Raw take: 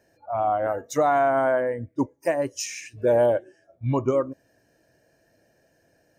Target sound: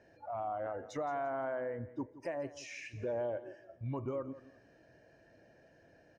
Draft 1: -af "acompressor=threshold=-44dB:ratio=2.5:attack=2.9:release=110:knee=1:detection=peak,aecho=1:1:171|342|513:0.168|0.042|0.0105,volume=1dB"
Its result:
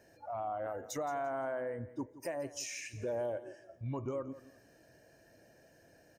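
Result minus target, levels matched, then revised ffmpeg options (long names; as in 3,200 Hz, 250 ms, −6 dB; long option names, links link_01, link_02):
4,000 Hz band +5.5 dB
-af "acompressor=threshold=-44dB:ratio=2.5:attack=2.9:release=110:knee=1:detection=peak,lowpass=3500,aecho=1:1:171|342|513:0.168|0.042|0.0105,volume=1dB"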